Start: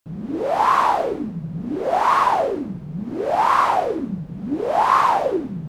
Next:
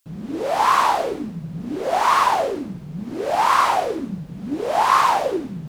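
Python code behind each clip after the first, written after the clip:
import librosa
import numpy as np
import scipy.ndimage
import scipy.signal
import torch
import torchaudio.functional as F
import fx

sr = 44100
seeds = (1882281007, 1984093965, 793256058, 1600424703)

y = fx.high_shelf(x, sr, hz=2300.0, db=11.0)
y = y * 10.0 ** (-2.0 / 20.0)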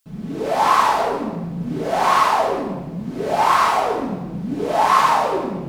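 y = fx.room_shoebox(x, sr, seeds[0], volume_m3=950.0, walls='mixed', distance_m=1.5)
y = y * 10.0 ** (-1.5 / 20.0)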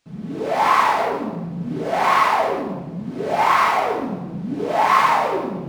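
y = scipy.signal.sosfilt(scipy.signal.butter(2, 76.0, 'highpass', fs=sr, output='sos'), x)
y = fx.dynamic_eq(y, sr, hz=2100.0, q=3.2, threshold_db=-40.0, ratio=4.0, max_db=7)
y = np.interp(np.arange(len(y)), np.arange(len(y))[::3], y[::3])
y = y * 10.0 ** (-1.0 / 20.0)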